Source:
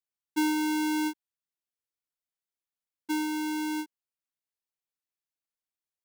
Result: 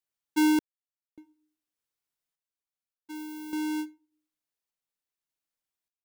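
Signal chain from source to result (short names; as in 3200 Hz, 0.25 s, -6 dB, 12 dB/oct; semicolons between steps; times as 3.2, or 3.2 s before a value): shoebox room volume 260 m³, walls furnished, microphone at 0.33 m; random-step tremolo 1.7 Hz, depth 100%; 3.14–3.54 added noise violet -57 dBFS; gain +3.5 dB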